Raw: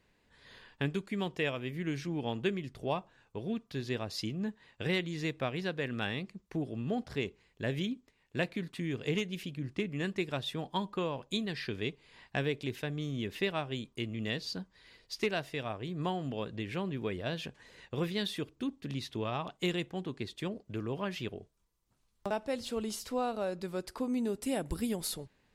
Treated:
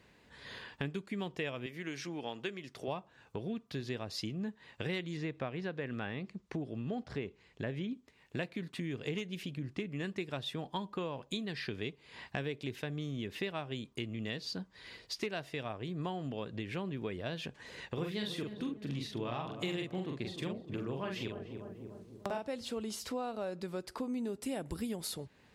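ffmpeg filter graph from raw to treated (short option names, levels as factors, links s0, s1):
-filter_complex "[0:a]asettb=1/sr,asplit=3[s0][s1][s2];[s0]atrim=end=1.664[s3];[s1]atrim=start=1.66:end=2.88,asetpts=PTS-STARTPTS,afade=t=in:d=0.004:c=qsin,afade=t=out:st=1.216:d=0.004:c=qsin,highpass=f=550:p=1,equalizer=f=5700:t=o:w=0.33:g=4.5[s4];[s2]atrim=start=2.876[s5];[s3][s4]acrossfade=d=0.004:c1=hsin:c2=qsin[s6];[s6][s5]acrossfade=d=0.004:c1=qsin:c2=hsin,asettb=1/sr,asplit=3[s7][s8][s9];[s7]atrim=end=5.174[s10];[s8]atrim=start=5.17:end=7.93,asetpts=PTS-STARTPTS,afade=t=in:d=0.004:c=qsin,afade=t=out:st=2.756:d=0.004:c=qsin,lowpass=8000,acrossover=split=2500[s11][s12];[s12]acompressor=threshold=0.00282:ratio=4:attack=1:release=60[s13];[s11][s13]amix=inputs=2:normalize=0[s14];[s9]atrim=start=7.926[s15];[s10][s14]acrossfade=d=0.004:c1=hsin:c2=qsin[s16];[s16][s15]acrossfade=d=0.004:c1=qsin:c2=hsin,asettb=1/sr,asplit=3[s17][s18][s19];[s17]atrim=end=17.874[s20];[s18]atrim=start=17.87:end=22.48,asetpts=PTS-STARTPTS,afade=t=in:d=0.004:c=qsin,afade=t=out:st=4.606:d=0.004:c=qsin,asplit=2[s21][s22];[s22]adelay=43,volume=0.668[s23];[s21][s23]amix=inputs=2:normalize=0,atrim=end_sample=203301,asplit=2[s24][s25];[s25]adelay=297,lowpass=f=870:p=1,volume=0.266,asplit=2[s26][s27];[s27]adelay=297,lowpass=f=870:p=1,volume=0.52,asplit=2[s28][s29];[s29]adelay=297,lowpass=f=870:p=1,volume=0.52,asplit=2[s30][s31];[s31]adelay=297,lowpass=f=870:p=1,volume=0.52,asplit=2[s32][s33];[s33]adelay=297,lowpass=f=870:p=1,volume=0.52,asplit=2[s34][s35];[s35]adelay=297,lowpass=f=870:p=1,volume=0.52[s36];[s24][s26][s28][s30][s32][s34][s36]amix=inputs=7:normalize=0,atrim=end_sample=203301[s37];[s19]atrim=start=22.476[s38];[s20][s37]acrossfade=d=0.004:c1=hsin:c2=qsin[s39];[s39][s38]acrossfade=d=0.004:c1=qsin:c2=hsin,highpass=62,highshelf=f=9000:g=-5,acompressor=threshold=0.00355:ratio=2.5,volume=2.51"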